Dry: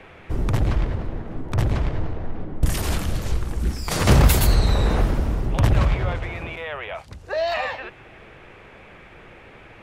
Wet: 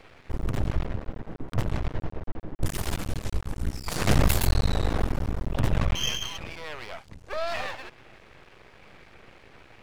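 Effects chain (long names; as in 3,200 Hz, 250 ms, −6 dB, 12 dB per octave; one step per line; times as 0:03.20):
pitch vibrato 2.5 Hz 6.1 cents
0:05.95–0:06.38: voice inversion scrambler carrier 3,200 Hz
half-wave rectification
level −2.5 dB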